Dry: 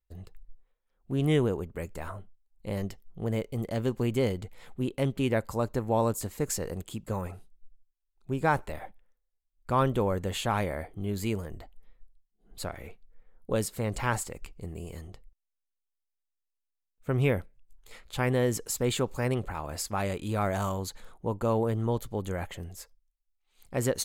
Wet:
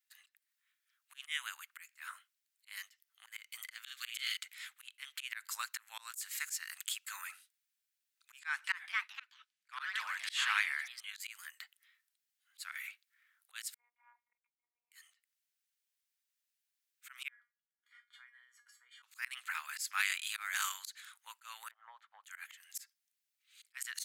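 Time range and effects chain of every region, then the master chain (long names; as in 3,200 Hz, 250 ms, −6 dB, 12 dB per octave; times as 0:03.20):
0:03.84–0:04.37: linear-phase brick-wall high-pass 1,100 Hz + parametric band 3,600 Hz +10 dB 0.5 octaves + double-tracking delay 43 ms −3.5 dB
0:08.39–0:11.20: delay with pitch and tempo change per echo 251 ms, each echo +3 semitones, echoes 3, each echo −6 dB + high-frequency loss of the air 53 metres + notch filter 1,400 Hz, Q 22
0:13.74–0:14.92: formant resonators in series u + phases set to zero 240 Hz
0:17.28–0:19.03: downward compressor 10 to 1, threshold −34 dBFS + Savitzky-Golay smoothing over 41 samples + tuned comb filter 240 Hz, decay 0.22 s, mix 90%
0:21.71–0:22.24: low-pass with resonance 720 Hz, resonance Q 2.3 + low-shelf EQ 360 Hz −12 dB + multiband upward and downward compressor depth 70%
whole clip: Butterworth high-pass 1,500 Hz 36 dB per octave; volume swells 230 ms; level +8.5 dB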